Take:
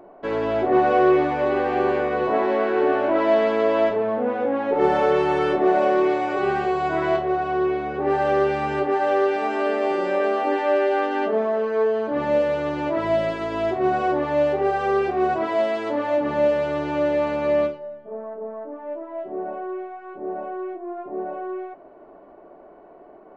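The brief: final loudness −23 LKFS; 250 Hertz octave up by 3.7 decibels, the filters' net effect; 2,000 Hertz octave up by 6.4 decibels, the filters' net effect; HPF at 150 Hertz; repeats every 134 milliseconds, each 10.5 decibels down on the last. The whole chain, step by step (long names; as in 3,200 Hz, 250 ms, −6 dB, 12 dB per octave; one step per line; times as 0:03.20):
high-pass filter 150 Hz
parametric band 250 Hz +6 dB
parametric band 2,000 Hz +8.5 dB
repeating echo 134 ms, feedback 30%, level −10.5 dB
level −3.5 dB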